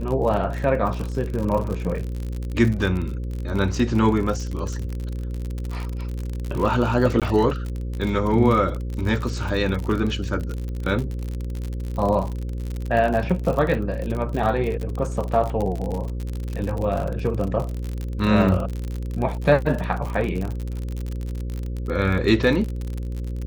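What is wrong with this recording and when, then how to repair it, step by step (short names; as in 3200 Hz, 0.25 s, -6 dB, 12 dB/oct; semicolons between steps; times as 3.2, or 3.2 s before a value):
buzz 60 Hz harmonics 9 -28 dBFS
crackle 52/s -26 dBFS
7.2–7.22 gap 17 ms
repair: de-click; de-hum 60 Hz, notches 9; interpolate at 7.2, 17 ms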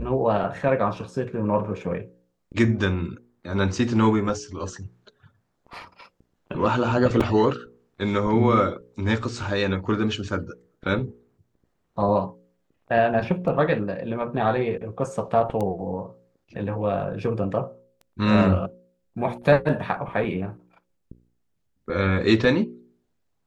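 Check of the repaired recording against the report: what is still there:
none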